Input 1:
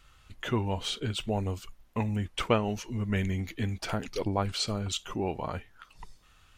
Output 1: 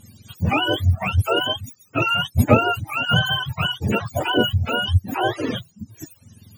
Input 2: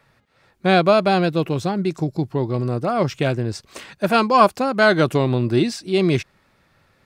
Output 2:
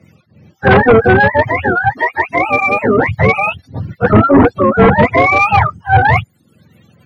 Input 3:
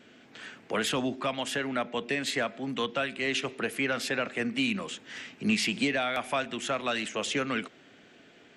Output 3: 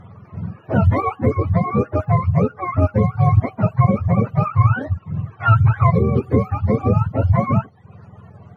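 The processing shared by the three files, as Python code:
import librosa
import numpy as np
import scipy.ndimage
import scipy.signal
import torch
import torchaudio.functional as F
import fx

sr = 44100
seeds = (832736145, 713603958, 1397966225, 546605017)

y = fx.octave_mirror(x, sr, pivot_hz=540.0)
y = fx.fold_sine(y, sr, drive_db=9, ceiling_db=-2.0)
y = fx.dereverb_blind(y, sr, rt60_s=0.52)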